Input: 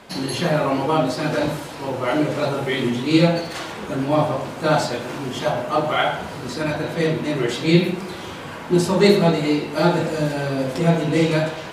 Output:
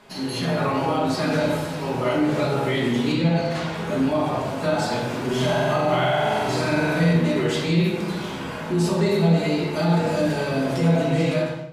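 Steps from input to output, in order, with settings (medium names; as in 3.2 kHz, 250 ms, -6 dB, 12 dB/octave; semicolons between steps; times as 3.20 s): fade out at the end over 0.61 s; flange 0.18 Hz, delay 7.3 ms, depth 7.8 ms, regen +50%; 5.24–7.13 s: flutter echo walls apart 8 m, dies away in 1.2 s; peak limiter -19 dBFS, peak gain reduction 12 dB; 3.12–3.74 s: treble shelf 7.2 kHz -10.5 dB; simulated room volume 560 m³, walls mixed, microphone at 1.4 m; level rider gain up to 5 dB; trim -3 dB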